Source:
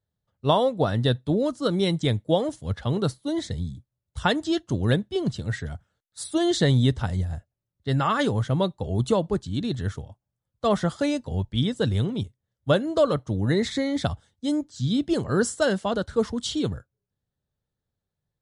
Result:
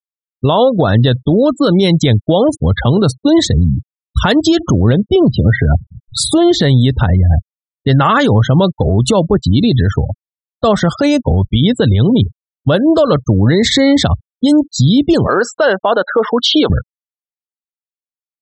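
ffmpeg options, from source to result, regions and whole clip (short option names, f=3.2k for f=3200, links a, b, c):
-filter_complex "[0:a]asettb=1/sr,asplit=3[a][b][c];[a]atrim=end=4.594[d];[b]atrim=start=4.59:end=6.61,asetpts=PTS-STARTPTS,afade=t=in:d=0.004:c=qsin,afade=t=out:st=2.016:d=0.004:c=qsin,aemphasis=mode=reproduction:type=75fm,bandreject=f=1.7k:w=9.5,acompressor=mode=upward:threshold=-30dB:ratio=2.5:attack=3.2:release=140:knee=2.83:detection=peak[e];[c]atrim=start=6.606[f];[d][e]acrossfade=d=0.004:c1=hsin:c2=qsin[g];[g][f]acrossfade=d=0.004:c1=qsin:c2=hsin,asettb=1/sr,asplit=3[h][i][j];[h]atrim=end=15.274[k];[i]atrim=start=15.27:end=16.7,asetpts=PTS-STARTPTS,afade=t=in:d=0.004:c=qsin,afade=t=out:st=1.426:d=0.004:c=qsin,highpass=600,lowpass=4.1k,highshelf=f=2.1k:g=-8,acontrast=60[l];[j]atrim=start=16.696[m];[k][l]acrossfade=d=0.004:c1=hsin:c2=qsin[n];[n][m]acrossfade=d=0.004:c1=qsin:c2=hsin,afftfilt=real='re*gte(hypot(re,im),0.0126)':imag='im*gte(hypot(re,im),0.0126)':win_size=1024:overlap=0.75,acompressor=threshold=-28dB:ratio=6,alimiter=level_in=27dB:limit=-1dB:release=50:level=0:latency=1,volume=-2dB"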